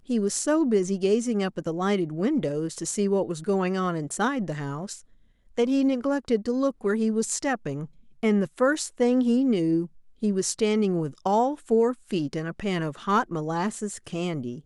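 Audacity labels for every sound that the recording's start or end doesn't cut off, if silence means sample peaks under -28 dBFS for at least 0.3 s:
5.580000	7.840000	sound
8.230000	9.850000	sound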